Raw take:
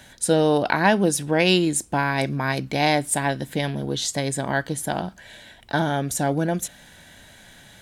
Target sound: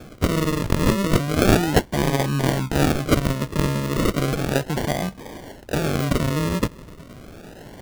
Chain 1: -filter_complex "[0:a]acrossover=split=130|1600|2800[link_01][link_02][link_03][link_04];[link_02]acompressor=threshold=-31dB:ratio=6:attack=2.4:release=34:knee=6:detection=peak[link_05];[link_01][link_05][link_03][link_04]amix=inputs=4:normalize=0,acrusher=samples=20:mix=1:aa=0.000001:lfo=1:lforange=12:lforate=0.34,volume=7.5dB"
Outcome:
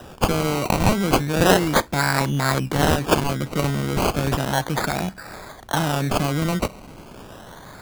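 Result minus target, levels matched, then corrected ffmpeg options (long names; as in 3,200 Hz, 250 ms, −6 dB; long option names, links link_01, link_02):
sample-and-hold swept by an LFO: distortion −5 dB
-filter_complex "[0:a]acrossover=split=130|1600|2800[link_01][link_02][link_03][link_04];[link_02]acompressor=threshold=-31dB:ratio=6:attack=2.4:release=34:knee=6:detection=peak[link_05];[link_01][link_05][link_03][link_04]amix=inputs=4:normalize=0,acrusher=samples=45:mix=1:aa=0.000001:lfo=1:lforange=27:lforate=0.34,volume=7.5dB"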